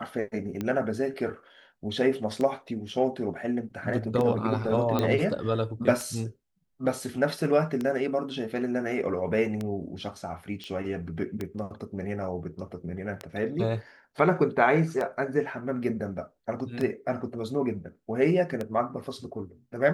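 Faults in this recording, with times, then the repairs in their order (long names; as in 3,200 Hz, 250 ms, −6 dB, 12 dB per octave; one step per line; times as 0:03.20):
scratch tick 33 1/3 rpm −18 dBFS
0:04.99: click −13 dBFS
0:10.64: click −25 dBFS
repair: click removal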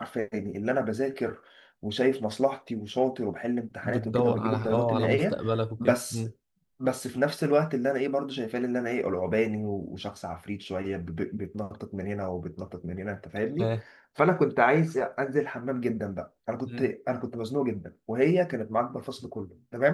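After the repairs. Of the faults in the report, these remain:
none of them is left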